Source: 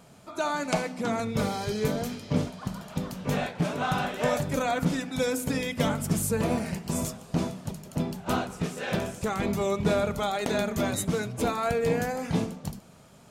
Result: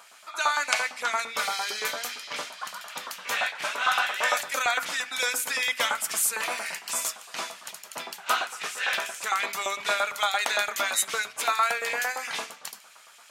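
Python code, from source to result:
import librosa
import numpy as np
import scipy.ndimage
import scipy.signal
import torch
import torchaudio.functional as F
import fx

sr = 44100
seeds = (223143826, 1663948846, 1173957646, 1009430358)

y = fx.filter_lfo_highpass(x, sr, shape='saw_up', hz=8.8, low_hz=980.0, high_hz=2500.0, q=1.4)
y = y * 10.0 ** (7.0 / 20.0)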